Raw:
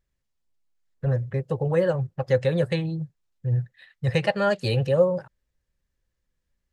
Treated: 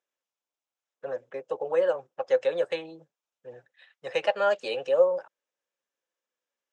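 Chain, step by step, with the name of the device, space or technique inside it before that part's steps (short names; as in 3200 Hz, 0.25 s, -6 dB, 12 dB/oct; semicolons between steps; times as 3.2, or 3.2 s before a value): phone speaker on a table (speaker cabinet 370–7100 Hz, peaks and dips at 380 Hz -6 dB, 1900 Hz -7 dB, 4400 Hz -10 dB)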